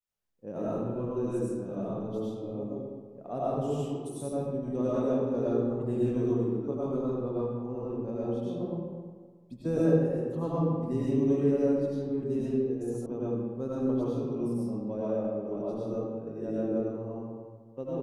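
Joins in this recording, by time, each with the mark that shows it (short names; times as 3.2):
13.06 sound cut off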